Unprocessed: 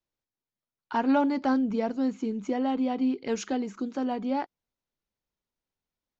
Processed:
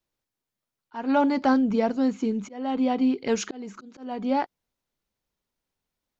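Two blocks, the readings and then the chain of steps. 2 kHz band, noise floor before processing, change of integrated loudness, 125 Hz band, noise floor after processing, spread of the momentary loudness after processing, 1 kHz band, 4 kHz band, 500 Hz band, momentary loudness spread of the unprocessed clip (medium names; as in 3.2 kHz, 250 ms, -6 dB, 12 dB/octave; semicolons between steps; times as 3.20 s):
+3.0 dB, under -85 dBFS, +3.0 dB, no reading, under -85 dBFS, 15 LU, +2.5 dB, +4.0 dB, +3.5 dB, 8 LU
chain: dynamic bell 310 Hz, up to -3 dB, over -37 dBFS; slow attack 347 ms; trim +5.5 dB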